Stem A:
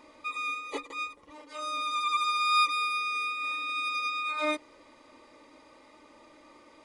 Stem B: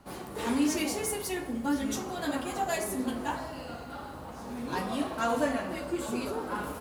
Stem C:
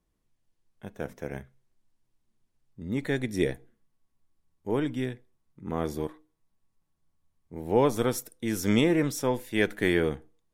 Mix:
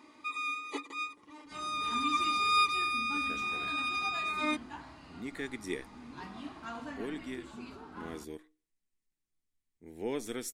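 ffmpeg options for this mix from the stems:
ffmpeg -i stem1.wav -i stem2.wav -i stem3.wav -filter_complex "[0:a]highpass=110,equalizer=frequency=350:width_type=o:width=1.6:gain=5.5,volume=-2dB[link_01];[1:a]lowpass=5000,adelay=1450,volume=-10.5dB[link_02];[2:a]equalizer=frequency=125:width_type=o:width=1:gain=-10,equalizer=frequency=250:width_type=o:width=1:gain=3,equalizer=frequency=500:width_type=o:width=1:gain=11,equalizer=frequency=1000:width_type=o:width=1:gain=-9,equalizer=frequency=2000:width_type=o:width=1:gain=8,equalizer=frequency=4000:width_type=o:width=1:gain=3,equalizer=frequency=8000:width_type=o:width=1:gain=9,adelay=2300,volume=-12.5dB[link_03];[link_01][link_02][link_03]amix=inputs=3:normalize=0,equalizer=frequency=530:width_type=o:width=0.58:gain=-15" out.wav

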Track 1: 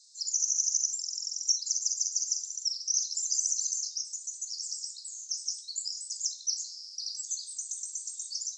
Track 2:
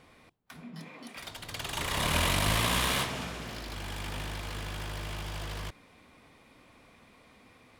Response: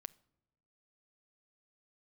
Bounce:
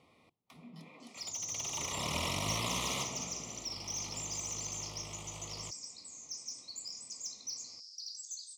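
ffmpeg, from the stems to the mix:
-filter_complex "[0:a]asoftclip=type=tanh:threshold=-27dB,adelay=1000,volume=-5dB[link_01];[1:a]highpass=91,volume=-6.5dB[link_02];[link_01][link_02]amix=inputs=2:normalize=0,asuperstop=centerf=1600:order=4:qfactor=2.2,highshelf=frequency=10000:gain=-9"

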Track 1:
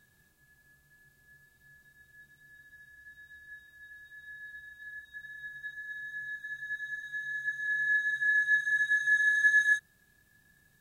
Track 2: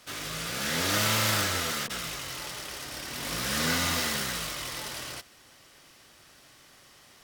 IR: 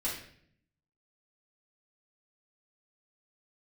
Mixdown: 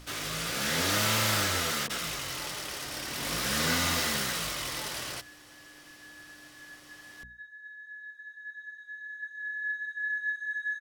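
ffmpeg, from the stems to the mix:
-filter_complex "[0:a]highpass=790,adelay=1750,volume=-6dB,asplit=2[link_01][link_02];[link_02]volume=-14dB[link_03];[1:a]aemphasis=mode=production:type=50kf,aeval=exprs='val(0)+0.00447*(sin(2*PI*60*n/s)+sin(2*PI*2*60*n/s)/2+sin(2*PI*3*60*n/s)/3+sin(2*PI*4*60*n/s)/4+sin(2*PI*5*60*n/s)/5)':channel_layout=same,asoftclip=type=tanh:threshold=-16.5dB,volume=1.5dB[link_04];[2:a]atrim=start_sample=2205[link_05];[link_03][link_05]afir=irnorm=-1:irlink=0[link_06];[link_01][link_04][link_06]amix=inputs=3:normalize=0,aemphasis=mode=reproduction:type=50kf,bandreject=frequency=60:width_type=h:width=6,bandreject=frequency=120:width_type=h:width=6,bandreject=frequency=180:width_type=h:width=6,bandreject=frequency=240:width_type=h:width=6"

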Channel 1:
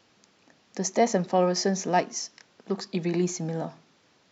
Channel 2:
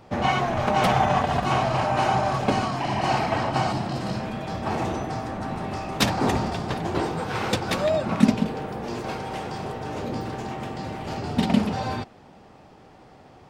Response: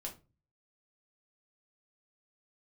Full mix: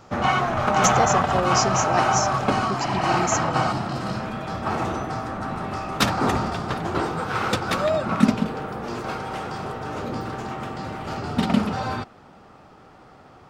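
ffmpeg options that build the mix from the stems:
-filter_complex "[0:a]equalizer=frequency=7900:width_type=o:width=1.1:gain=13.5,volume=-2.5dB[link_01];[1:a]equalizer=frequency=1300:width=3.4:gain=9.5,volume=0dB[link_02];[link_01][link_02]amix=inputs=2:normalize=0"

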